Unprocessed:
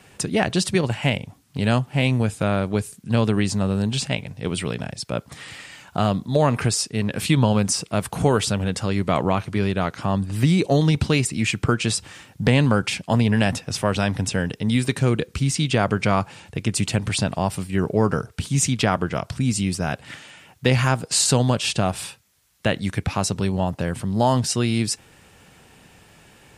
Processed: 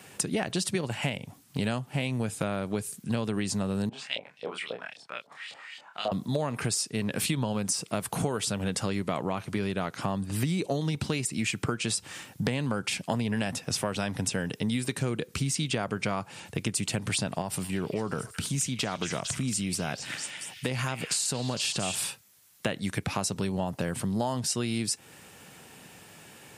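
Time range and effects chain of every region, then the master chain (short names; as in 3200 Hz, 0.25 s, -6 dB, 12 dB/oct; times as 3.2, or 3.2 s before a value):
3.89–6.12 low shelf 150 Hz -5.5 dB + LFO band-pass saw up 3.7 Hz 520–4300 Hz + doubler 27 ms -3.5 dB
17.41–21.96 compressor 2:1, threshold -26 dBFS + delay with a stepping band-pass 0.227 s, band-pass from 2700 Hz, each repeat 0.7 oct, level -3 dB
whole clip: HPF 120 Hz; high shelf 8600 Hz +8.5 dB; compressor 6:1, threshold -26 dBFS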